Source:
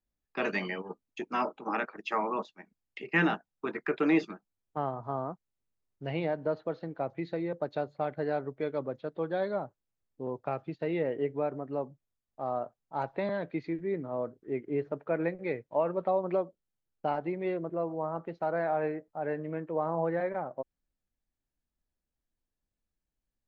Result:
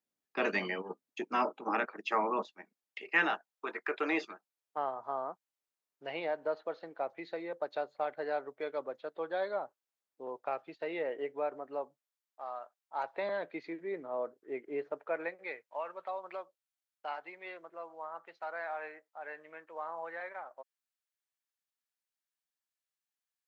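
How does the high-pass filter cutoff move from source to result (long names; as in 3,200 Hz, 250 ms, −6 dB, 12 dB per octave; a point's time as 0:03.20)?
0:02.48 230 Hz
0:02.98 560 Hz
0:11.75 560 Hz
0:12.64 1,300 Hz
0:13.29 490 Hz
0:14.84 490 Hz
0:15.78 1,200 Hz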